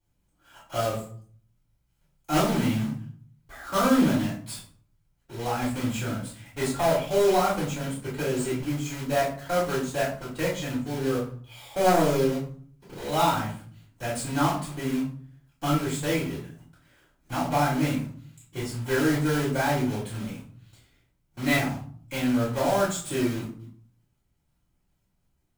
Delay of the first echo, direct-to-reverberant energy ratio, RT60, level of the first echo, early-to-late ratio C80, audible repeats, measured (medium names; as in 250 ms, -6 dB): no echo, -10.5 dB, 0.50 s, no echo, 10.5 dB, no echo